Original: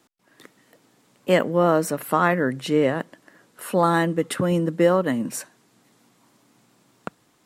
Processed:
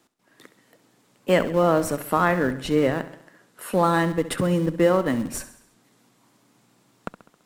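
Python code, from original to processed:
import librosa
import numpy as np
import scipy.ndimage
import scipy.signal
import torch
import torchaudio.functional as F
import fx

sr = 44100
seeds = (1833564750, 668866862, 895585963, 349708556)

p1 = fx.schmitt(x, sr, flips_db=-22.5)
p2 = x + (p1 * 10.0 ** (-12.0 / 20.0))
p3 = fx.echo_feedback(p2, sr, ms=67, feedback_pct=54, wet_db=-14.0)
y = p3 * 10.0 ** (-1.5 / 20.0)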